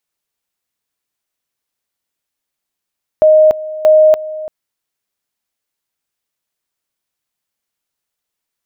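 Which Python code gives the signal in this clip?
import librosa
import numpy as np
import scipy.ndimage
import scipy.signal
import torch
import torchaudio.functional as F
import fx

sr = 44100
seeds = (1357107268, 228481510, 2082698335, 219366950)

y = fx.two_level_tone(sr, hz=621.0, level_db=-4.0, drop_db=17.0, high_s=0.29, low_s=0.34, rounds=2)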